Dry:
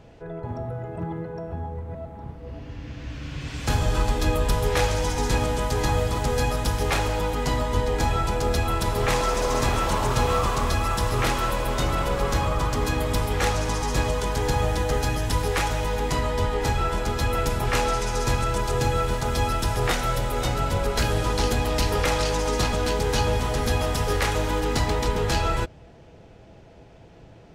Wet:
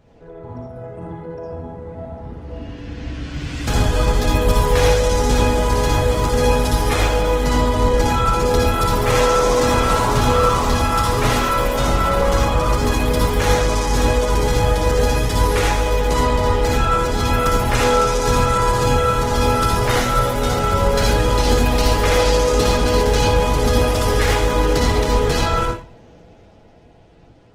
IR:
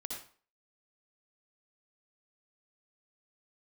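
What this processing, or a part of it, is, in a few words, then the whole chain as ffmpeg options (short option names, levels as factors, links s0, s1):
speakerphone in a meeting room: -filter_complex "[1:a]atrim=start_sample=2205[s0];[0:a][s0]afir=irnorm=-1:irlink=0,dynaudnorm=f=350:g=11:m=2.51" -ar 48000 -c:a libopus -b:a 16k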